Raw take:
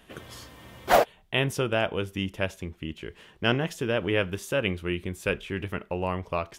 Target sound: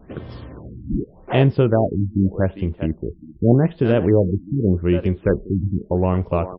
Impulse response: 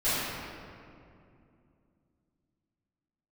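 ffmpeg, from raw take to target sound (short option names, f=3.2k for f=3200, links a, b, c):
-filter_complex "[0:a]tiltshelf=f=800:g=9,asplit=2[a][b];[b]adelay=400,highpass=300,lowpass=3.4k,asoftclip=type=hard:threshold=-15dB,volume=-10dB[c];[a][c]amix=inputs=2:normalize=0,afftfilt=real='re*lt(b*sr/1024,300*pow(5600/300,0.5+0.5*sin(2*PI*0.84*pts/sr)))':imag='im*lt(b*sr/1024,300*pow(5600/300,0.5+0.5*sin(2*PI*0.84*pts/sr)))':win_size=1024:overlap=0.75,volume=5.5dB"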